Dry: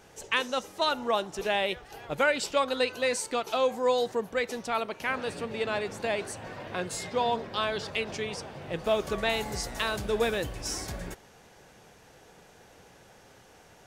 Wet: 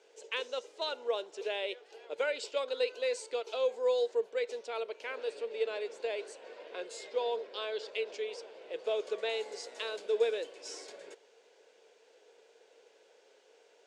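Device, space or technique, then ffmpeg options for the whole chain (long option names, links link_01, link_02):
phone speaker on a table: -af "highpass=frequency=410:width=0.5412,highpass=frequency=410:width=1.3066,equalizer=frequency=450:width_type=q:width=4:gain=9,equalizer=frequency=790:width_type=q:width=4:gain=-8,equalizer=frequency=1200:width_type=q:width=4:gain=-9,equalizer=frequency=1800:width_type=q:width=4:gain=-6,equalizer=frequency=5900:width_type=q:width=4:gain=-5,lowpass=frequency=7400:width=0.5412,lowpass=frequency=7400:width=1.3066,volume=-6.5dB"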